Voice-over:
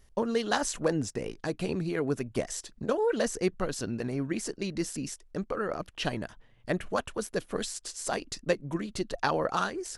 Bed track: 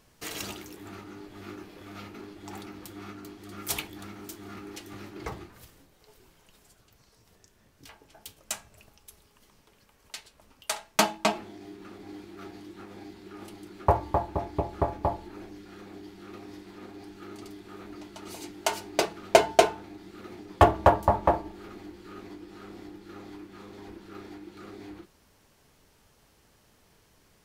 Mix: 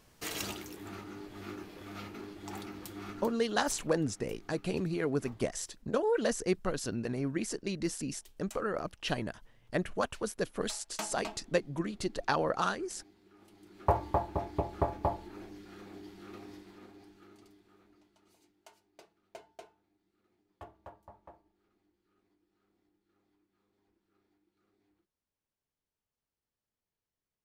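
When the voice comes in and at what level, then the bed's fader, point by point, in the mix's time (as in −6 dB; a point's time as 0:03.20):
3.05 s, −2.0 dB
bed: 0:03.25 −1 dB
0:03.47 −16.5 dB
0:13.44 −16.5 dB
0:13.96 −3.5 dB
0:16.43 −3.5 dB
0:18.81 −32 dB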